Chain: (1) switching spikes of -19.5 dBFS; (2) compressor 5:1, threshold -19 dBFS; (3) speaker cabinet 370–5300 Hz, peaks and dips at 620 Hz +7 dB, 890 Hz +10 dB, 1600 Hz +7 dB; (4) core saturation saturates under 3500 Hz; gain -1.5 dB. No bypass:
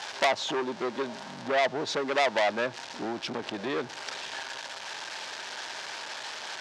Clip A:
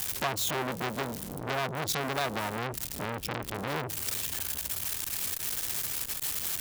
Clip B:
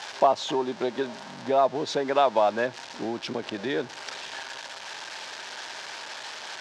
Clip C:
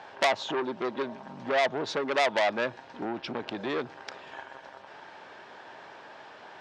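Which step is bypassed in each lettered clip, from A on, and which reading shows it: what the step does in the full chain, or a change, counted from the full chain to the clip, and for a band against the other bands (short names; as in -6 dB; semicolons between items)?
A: 3, 125 Hz band +13.5 dB; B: 4, crest factor change -3.0 dB; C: 1, distortion -10 dB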